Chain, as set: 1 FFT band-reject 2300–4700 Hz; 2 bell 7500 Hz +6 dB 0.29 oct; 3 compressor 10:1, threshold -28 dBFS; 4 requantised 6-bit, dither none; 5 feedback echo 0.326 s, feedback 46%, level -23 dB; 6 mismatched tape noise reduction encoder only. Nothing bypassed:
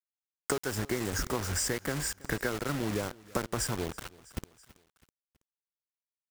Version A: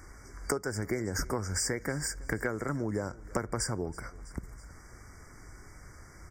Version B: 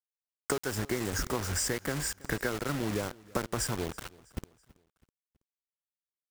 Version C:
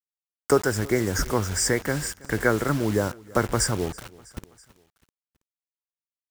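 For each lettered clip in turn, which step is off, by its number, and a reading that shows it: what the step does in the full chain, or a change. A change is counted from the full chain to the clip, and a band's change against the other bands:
4, distortion -7 dB; 6, momentary loudness spread change +1 LU; 3, mean gain reduction 4.5 dB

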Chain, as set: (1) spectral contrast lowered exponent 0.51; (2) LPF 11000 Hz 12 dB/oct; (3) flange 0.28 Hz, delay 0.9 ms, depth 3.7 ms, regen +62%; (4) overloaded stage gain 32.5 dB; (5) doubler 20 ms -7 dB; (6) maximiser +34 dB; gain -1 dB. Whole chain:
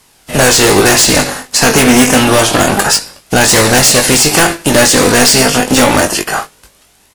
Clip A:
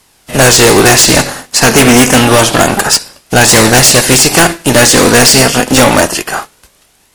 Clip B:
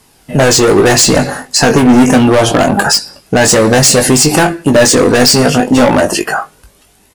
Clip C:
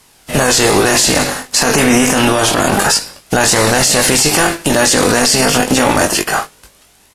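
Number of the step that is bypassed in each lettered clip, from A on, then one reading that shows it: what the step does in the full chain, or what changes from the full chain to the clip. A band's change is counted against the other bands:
5, 125 Hz band +2.0 dB; 1, 250 Hz band +4.0 dB; 4, distortion -5 dB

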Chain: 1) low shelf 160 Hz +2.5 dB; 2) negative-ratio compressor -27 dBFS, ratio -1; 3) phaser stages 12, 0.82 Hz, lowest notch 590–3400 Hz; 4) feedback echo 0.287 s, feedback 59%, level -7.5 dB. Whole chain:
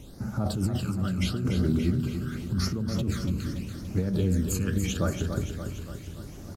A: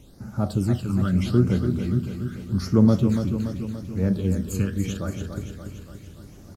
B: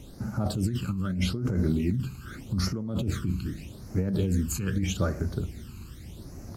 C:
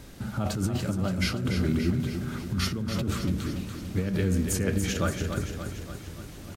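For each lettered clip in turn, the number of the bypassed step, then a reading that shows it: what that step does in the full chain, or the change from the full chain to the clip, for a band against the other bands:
2, crest factor change +2.5 dB; 4, echo-to-direct -5.5 dB to none; 3, 2 kHz band +3.5 dB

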